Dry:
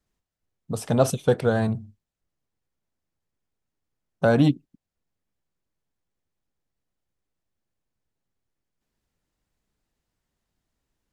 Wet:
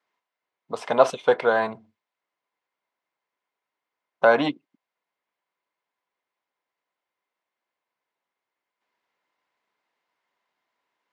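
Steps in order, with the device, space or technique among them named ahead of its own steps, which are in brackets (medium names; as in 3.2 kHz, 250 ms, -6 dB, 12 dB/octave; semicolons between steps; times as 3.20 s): tin-can telephone (band-pass 610–3100 Hz; small resonant body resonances 1/2.1 kHz, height 9 dB, ringing for 35 ms); trim +7 dB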